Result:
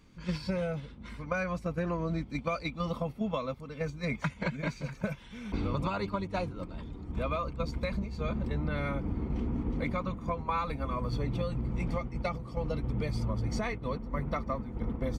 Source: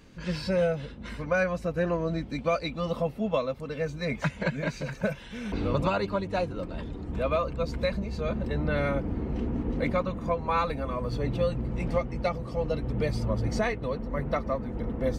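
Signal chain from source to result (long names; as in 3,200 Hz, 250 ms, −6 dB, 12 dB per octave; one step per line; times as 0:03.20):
noise gate −31 dBFS, range −7 dB
comb filter 0.9 ms, depth 35%
downward compressor, threshold −28 dBFS, peak gain reduction 7.5 dB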